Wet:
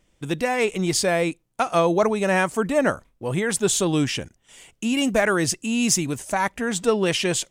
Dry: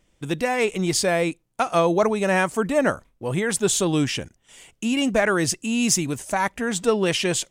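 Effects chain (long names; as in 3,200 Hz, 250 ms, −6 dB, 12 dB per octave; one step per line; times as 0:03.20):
0:04.94–0:05.36: high-shelf EQ 11,000 Hz +11 dB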